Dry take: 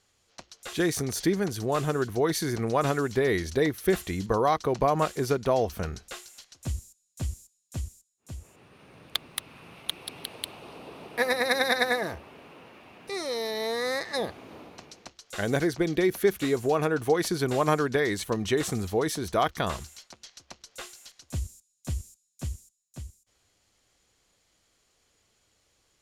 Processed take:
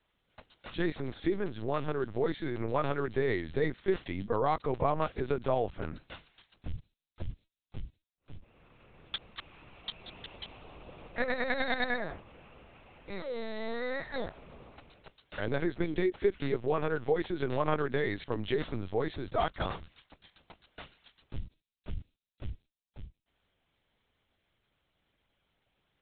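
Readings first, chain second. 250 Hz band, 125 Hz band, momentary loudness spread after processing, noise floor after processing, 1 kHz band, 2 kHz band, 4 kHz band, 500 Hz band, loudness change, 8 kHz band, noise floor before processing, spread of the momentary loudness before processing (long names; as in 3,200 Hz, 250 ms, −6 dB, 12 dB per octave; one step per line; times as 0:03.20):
−6.0 dB, −6.0 dB, 20 LU, below −85 dBFS, −6.0 dB, −6.0 dB, −9.5 dB, −5.5 dB, −5.5 dB, below −40 dB, −72 dBFS, 20 LU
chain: linear-prediction vocoder at 8 kHz pitch kept
level −5 dB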